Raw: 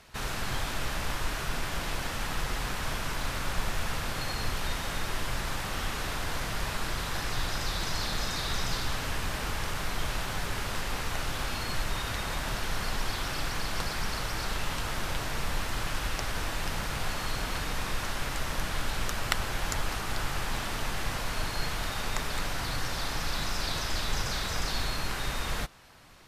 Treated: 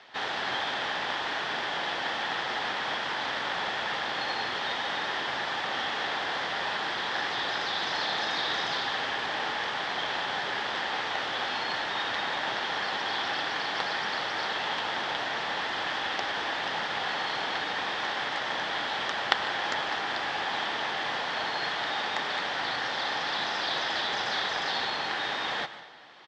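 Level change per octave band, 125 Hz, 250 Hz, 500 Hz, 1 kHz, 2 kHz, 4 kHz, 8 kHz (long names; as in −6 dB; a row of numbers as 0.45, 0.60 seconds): −15.0, −3.0, +3.5, +5.5, +5.5, +5.0, −10.0 decibels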